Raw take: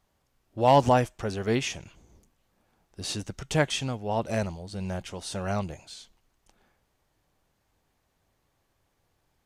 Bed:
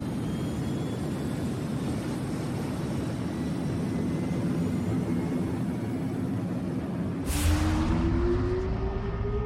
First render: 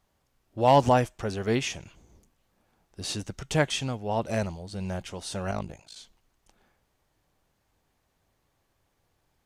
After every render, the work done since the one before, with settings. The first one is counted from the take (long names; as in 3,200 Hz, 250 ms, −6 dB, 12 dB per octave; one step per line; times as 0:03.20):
0:05.51–0:05.96: amplitude modulation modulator 53 Hz, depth 80%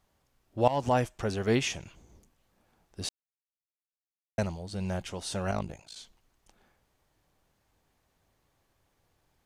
0:00.68–0:01.17: fade in, from −17.5 dB
0:03.09–0:04.38: silence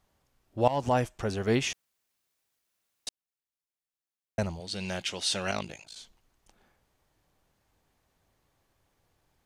0:01.73–0:03.07: fill with room tone
0:04.60–0:05.84: meter weighting curve D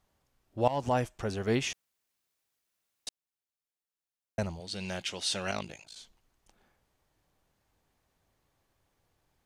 level −2.5 dB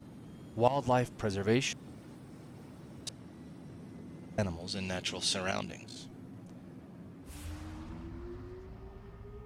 mix in bed −19 dB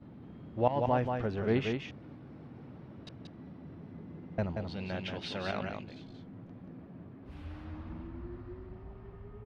high-frequency loss of the air 330 metres
single-tap delay 181 ms −5 dB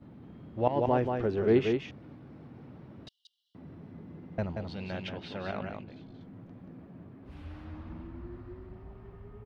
0:00.67–0:01.79: parametric band 370 Hz +9.5 dB 0.66 octaves
0:03.08–0:03.55: linear-phase brick-wall high-pass 2,800 Hz
0:05.09–0:06.21: low-pass filter 2,000 Hz 6 dB per octave